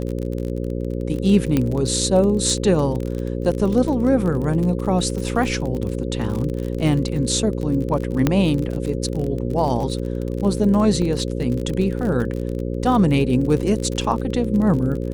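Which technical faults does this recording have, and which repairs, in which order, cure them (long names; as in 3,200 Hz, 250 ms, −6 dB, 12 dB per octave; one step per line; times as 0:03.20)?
mains buzz 60 Hz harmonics 9 −25 dBFS
surface crackle 37 per second −25 dBFS
0:01.57: click −7 dBFS
0:08.27: click −4 dBFS
0:11.02: drop-out 2.4 ms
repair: click removal
hum removal 60 Hz, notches 9
repair the gap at 0:11.02, 2.4 ms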